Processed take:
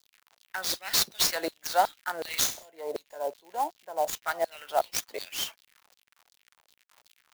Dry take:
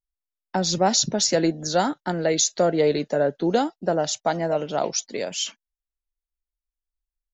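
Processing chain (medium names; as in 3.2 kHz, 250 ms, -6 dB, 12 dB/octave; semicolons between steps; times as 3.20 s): 0.69–1.64 s: dynamic bell 4 kHz, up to +5 dB, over -37 dBFS, Q 2.8; 2.45–4.14 s: time-frequency box 1.1–6.5 kHz -19 dB; crackle 110 per s -38 dBFS; LFO high-pass saw down 2.7 Hz 550–4900 Hz; 2.22–2.63 s: flutter echo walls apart 5.7 m, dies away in 0.33 s; sampling jitter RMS 0.025 ms; trim -5 dB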